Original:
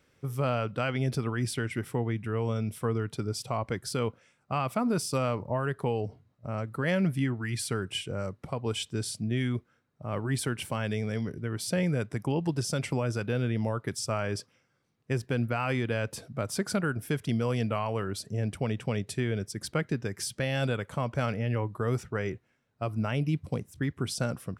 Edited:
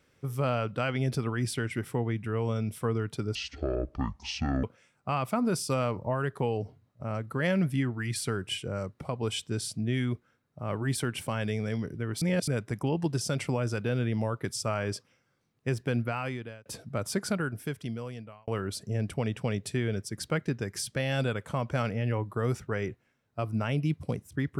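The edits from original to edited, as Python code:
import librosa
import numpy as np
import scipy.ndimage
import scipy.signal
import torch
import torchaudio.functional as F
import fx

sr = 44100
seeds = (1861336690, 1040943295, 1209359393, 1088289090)

y = fx.edit(x, sr, fx.speed_span(start_s=3.35, length_s=0.72, speed=0.56),
    fx.reverse_span(start_s=11.65, length_s=0.26),
    fx.fade_out_span(start_s=15.42, length_s=0.67),
    fx.fade_out_span(start_s=16.61, length_s=1.3), tone=tone)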